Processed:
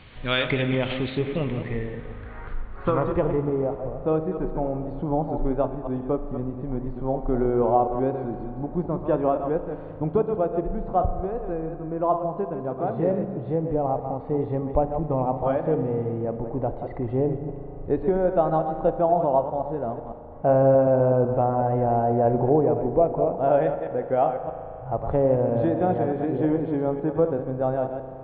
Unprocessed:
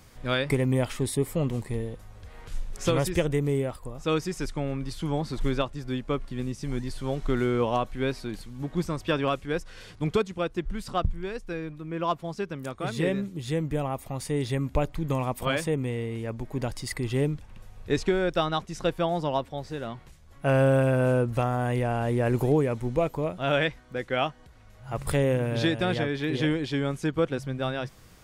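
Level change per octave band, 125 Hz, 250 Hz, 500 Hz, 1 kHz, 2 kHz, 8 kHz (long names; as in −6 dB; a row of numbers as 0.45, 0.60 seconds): 0.0 dB, +2.5 dB, +5.5 dB, +6.5 dB, −4.0 dB, below −35 dB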